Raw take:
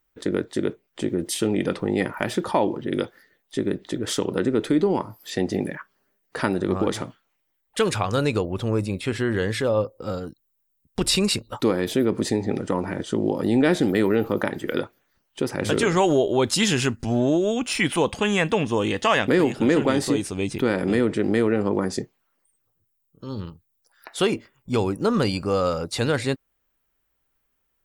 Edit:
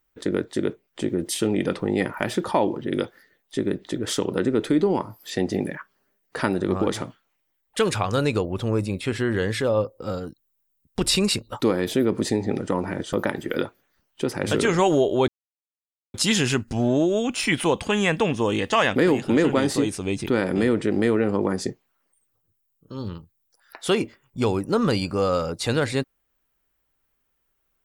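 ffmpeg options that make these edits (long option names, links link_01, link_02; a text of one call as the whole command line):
ffmpeg -i in.wav -filter_complex "[0:a]asplit=3[link_01][link_02][link_03];[link_01]atrim=end=13.132[link_04];[link_02]atrim=start=14.308:end=16.46,asetpts=PTS-STARTPTS,afade=type=out:start_time=2.148:duration=0.004:curve=hsin,apad=pad_dur=0.86[link_05];[link_03]atrim=start=16.46,asetpts=PTS-STARTPTS,afade=type=in:duration=0.004:curve=hsin[link_06];[link_05][link_06]concat=n=2:v=0:a=1[link_07];[link_04][link_07]acrossfade=duration=0.004:curve1=hsin:curve2=hsin" out.wav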